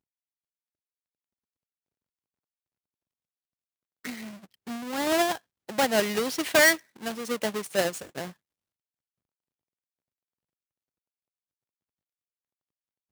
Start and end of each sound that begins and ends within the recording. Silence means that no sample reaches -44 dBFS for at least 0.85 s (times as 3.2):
4.05–8.32